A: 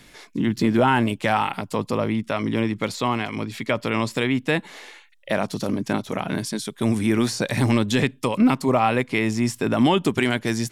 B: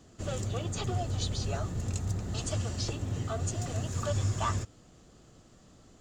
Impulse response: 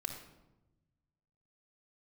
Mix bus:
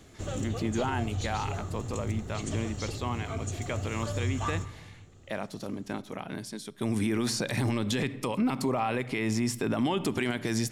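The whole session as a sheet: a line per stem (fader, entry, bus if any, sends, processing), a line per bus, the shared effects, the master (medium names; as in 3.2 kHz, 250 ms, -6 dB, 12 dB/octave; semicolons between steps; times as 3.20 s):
6.65 s -12.5 dB -> 7.08 s -2.5 dB, 0.00 s, send -14.5 dB, none
+1.0 dB, 0.00 s, send -9 dB, band-stop 4.9 kHz, Q 6.5; auto duck -9 dB, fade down 0.65 s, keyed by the first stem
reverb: on, RT60 1.0 s, pre-delay 3 ms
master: peak limiter -19.5 dBFS, peak gain reduction 10.5 dB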